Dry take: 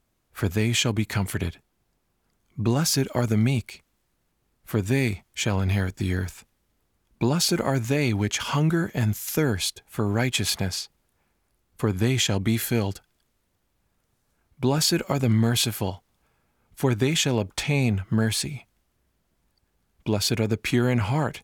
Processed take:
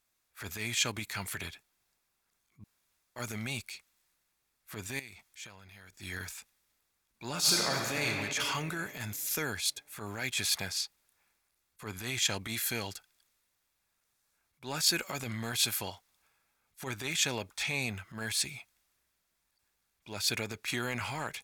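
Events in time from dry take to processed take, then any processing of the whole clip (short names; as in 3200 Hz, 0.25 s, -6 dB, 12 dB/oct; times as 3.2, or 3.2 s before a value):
2.64–3.16 room tone
4.99–5.93 compressor 16:1, threshold -35 dBFS
7.3–8.06 reverb throw, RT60 2.7 s, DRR 0 dB
whole clip: tilt shelf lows -9.5 dB, about 760 Hz; notch 3000 Hz, Q 13; transient shaper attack -11 dB, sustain +2 dB; gain -9 dB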